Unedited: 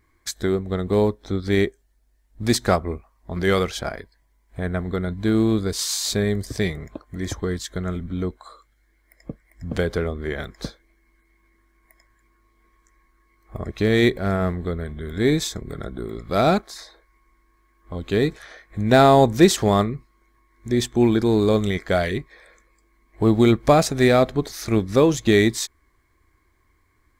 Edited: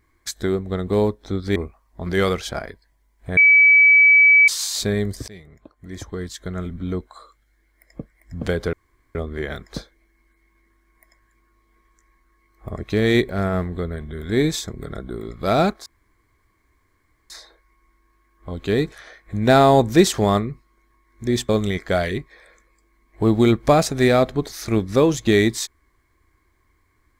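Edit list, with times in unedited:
1.56–2.86 s: delete
4.67–5.78 s: bleep 2.29 kHz -8.5 dBFS
6.58–8.15 s: fade in, from -21.5 dB
10.03 s: insert room tone 0.42 s
16.74 s: insert room tone 1.44 s
20.93–21.49 s: delete

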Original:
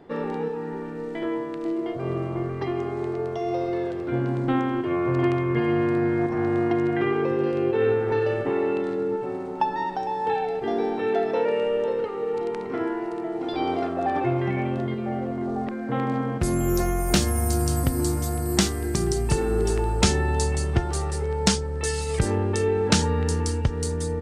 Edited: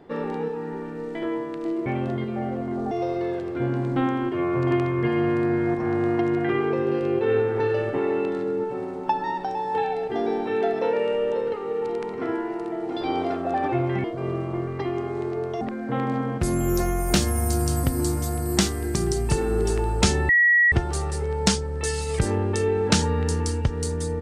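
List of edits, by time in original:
1.86–3.43 s: swap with 14.56–15.61 s
20.29–20.72 s: bleep 1.92 kHz -14 dBFS

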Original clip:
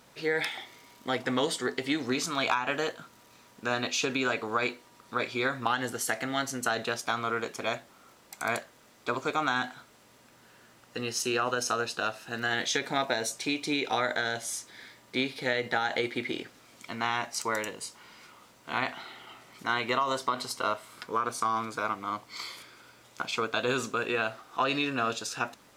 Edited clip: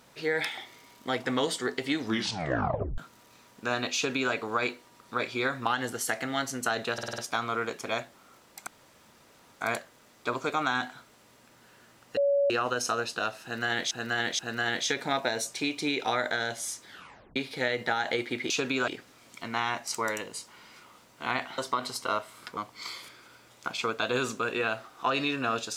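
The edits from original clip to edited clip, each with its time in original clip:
2.00 s: tape stop 0.98 s
3.95–4.33 s: copy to 16.35 s
6.93 s: stutter 0.05 s, 6 plays
8.42 s: insert room tone 0.94 s
10.98–11.31 s: bleep 564 Hz -21 dBFS
12.24–12.72 s: loop, 3 plays
14.73 s: tape stop 0.48 s
19.05–20.13 s: delete
21.12–22.11 s: delete

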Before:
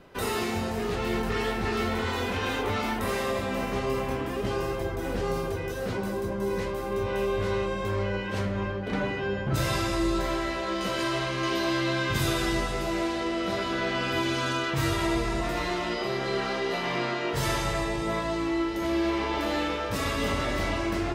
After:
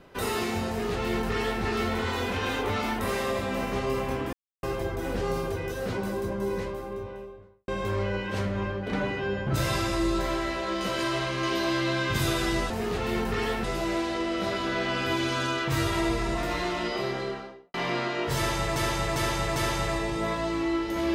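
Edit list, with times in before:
0.68–1.62 s: copy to 12.70 s
4.33–4.63 s: mute
6.25–7.68 s: studio fade out
16.06–16.80 s: studio fade out
17.42–17.82 s: loop, 4 plays

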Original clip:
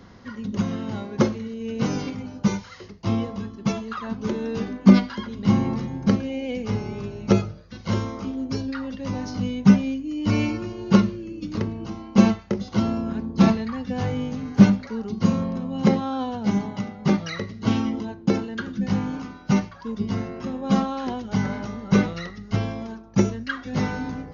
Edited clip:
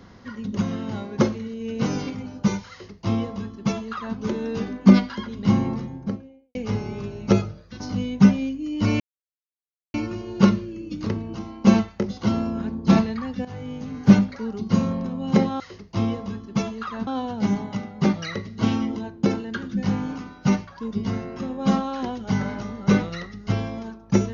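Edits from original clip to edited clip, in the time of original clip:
2.70–4.17 s: copy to 16.11 s
5.47–6.55 s: studio fade out
7.80–9.25 s: delete
10.45 s: insert silence 0.94 s
13.96–14.59 s: fade in, from -15 dB

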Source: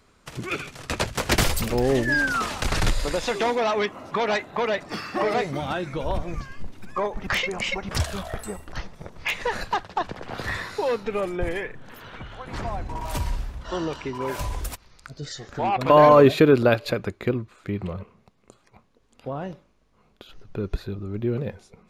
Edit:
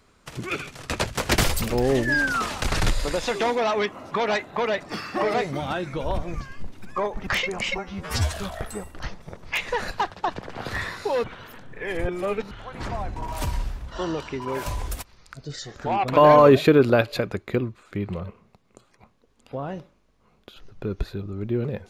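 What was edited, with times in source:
7.78–8.05 s: stretch 2×
10.97–12.24 s: reverse

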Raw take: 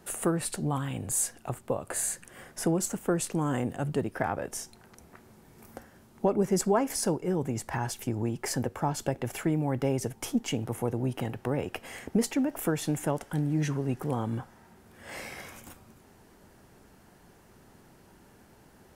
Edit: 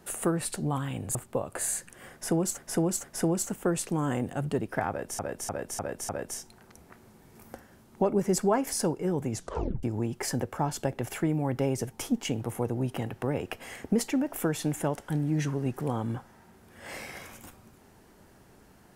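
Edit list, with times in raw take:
1.15–1.50 s: delete
2.47–2.93 s: loop, 3 plays
4.32–4.62 s: loop, 5 plays
7.56 s: tape stop 0.50 s

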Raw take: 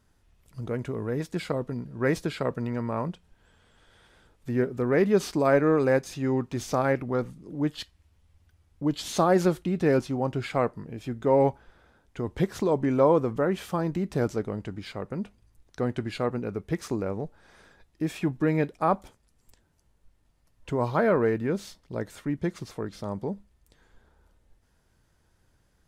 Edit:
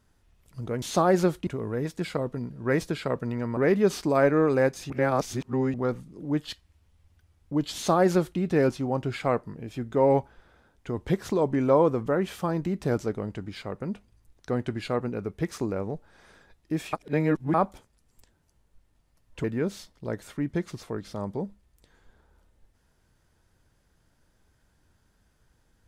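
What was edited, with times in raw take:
2.92–4.87 s: delete
6.20–7.04 s: reverse
9.04–9.69 s: copy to 0.82 s
18.23–18.84 s: reverse
20.74–21.32 s: delete

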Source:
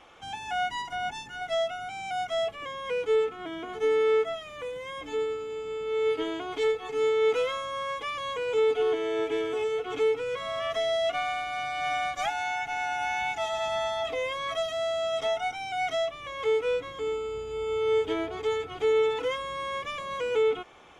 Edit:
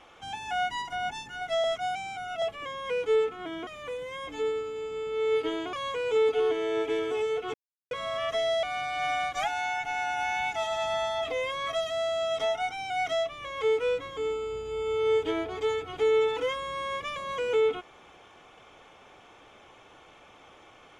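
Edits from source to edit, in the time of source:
1.64–2.42 s: reverse
3.67–4.41 s: delete
6.47–8.15 s: delete
9.96–10.33 s: mute
11.05–11.45 s: delete

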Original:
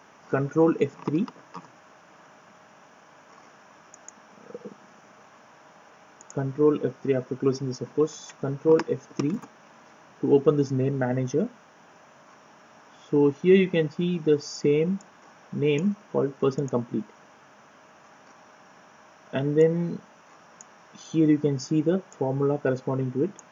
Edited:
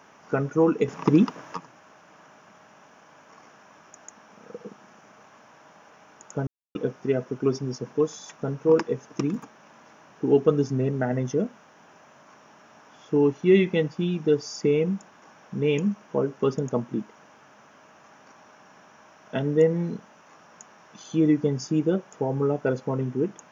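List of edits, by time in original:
0.88–1.57 s: gain +7.5 dB
6.47–6.75 s: mute

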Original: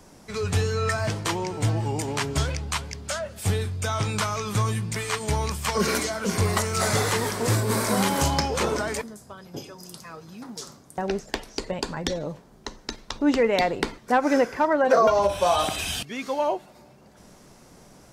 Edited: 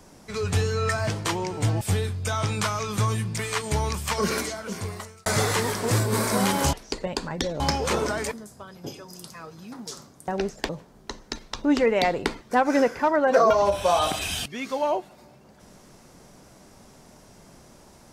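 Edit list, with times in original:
1.81–3.38 s: delete
5.63–6.83 s: fade out
11.39–12.26 s: move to 8.30 s

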